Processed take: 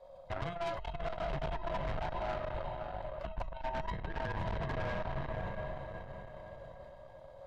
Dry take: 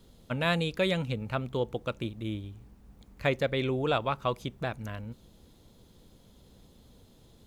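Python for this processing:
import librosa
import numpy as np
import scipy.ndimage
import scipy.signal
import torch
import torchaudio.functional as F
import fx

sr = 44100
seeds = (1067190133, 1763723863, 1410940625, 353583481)

y = fx.band_swap(x, sr, width_hz=500)
y = fx.lowpass(y, sr, hz=1800.0, slope=6)
y = fx.tilt_eq(y, sr, slope=-1.5)
y = y + 0.49 * np.pad(y, (int(1.9 * sr / 1000.0), 0))[:len(y)]
y = fx.echo_diffused(y, sr, ms=572, feedback_pct=45, wet_db=-6.5)
y = fx.room_shoebox(y, sr, seeds[0], volume_m3=350.0, walls='furnished', distance_m=1.0)
y = fx.over_compress(y, sr, threshold_db=-26.0, ratio=-0.5)
y = fx.tube_stage(y, sr, drive_db=30.0, bias=0.75)
y = fx.comb_fb(y, sr, f0_hz=640.0, decay_s=0.41, harmonics='all', damping=0.0, mix_pct=50)
y = fx.sustainer(y, sr, db_per_s=60.0)
y = y * librosa.db_to_amplitude(3.0)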